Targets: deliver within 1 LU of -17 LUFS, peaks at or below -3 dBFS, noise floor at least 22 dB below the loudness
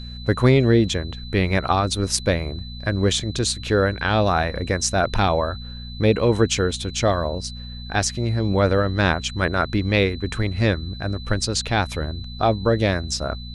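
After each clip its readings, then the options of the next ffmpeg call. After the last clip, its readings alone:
hum 60 Hz; highest harmonic 240 Hz; hum level -33 dBFS; steady tone 4 kHz; tone level -39 dBFS; loudness -21.5 LUFS; peak level -2.5 dBFS; loudness target -17.0 LUFS
-> -af "bandreject=f=60:t=h:w=4,bandreject=f=120:t=h:w=4,bandreject=f=180:t=h:w=4,bandreject=f=240:t=h:w=4"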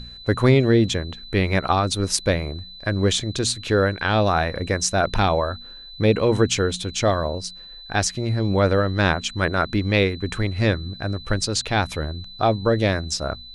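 hum not found; steady tone 4 kHz; tone level -39 dBFS
-> -af "bandreject=f=4000:w=30"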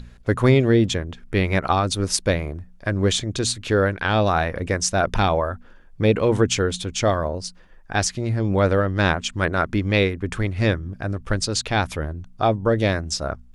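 steady tone not found; loudness -22.0 LUFS; peak level -3.0 dBFS; loudness target -17.0 LUFS
-> -af "volume=1.78,alimiter=limit=0.708:level=0:latency=1"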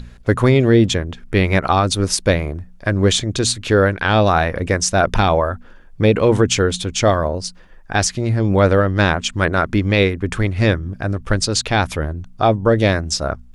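loudness -17.5 LUFS; peak level -3.0 dBFS; noise floor -42 dBFS

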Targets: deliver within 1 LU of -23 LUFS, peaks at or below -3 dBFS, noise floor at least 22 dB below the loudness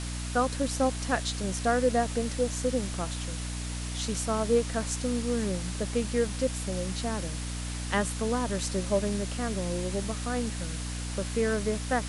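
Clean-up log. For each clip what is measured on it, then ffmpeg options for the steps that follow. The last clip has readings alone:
hum 60 Hz; highest harmonic 300 Hz; hum level -33 dBFS; noise floor -35 dBFS; noise floor target -52 dBFS; loudness -30.0 LUFS; peak level -13.0 dBFS; loudness target -23.0 LUFS
-> -af "bandreject=f=60:t=h:w=6,bandreject=f=120:t=h:w=6,bandreject=f=180:t=h:w=6,bandreject=f=240:t=h:w=6,bandreject=f=300:t=h:w=6"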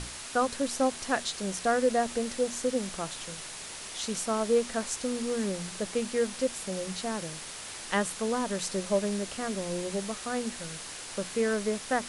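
hum not found; noise floor -42 dBFS; noise floor target -53 dBFS
-> -af "afftdn=nr=11:nf=-42"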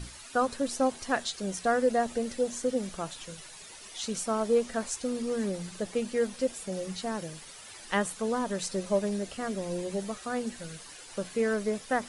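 noise floor -48 dBFS; noise floor target -53 dBFS
-> -af "afftdn=nr=6:nf=-48"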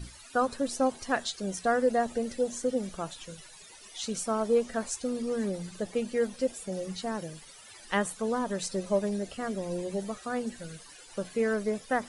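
noise floor -51 dBFS; noise floor target -53 dBFS
-> -af "afftdn=nr=6:nf=-51"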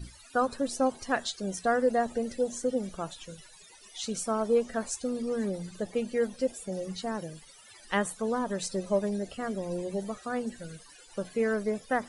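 noise floor -54 dBFS; loudness -31.0 LUFS; peak level -14.5 dBFS; loudness target -23.0 LUFS
-> -af "volume=2.51"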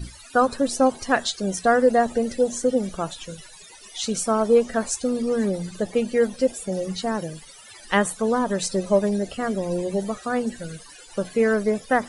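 loudness -23.5 LUFS; peak level -6.5 dBFS; noise floor -46 dBFS

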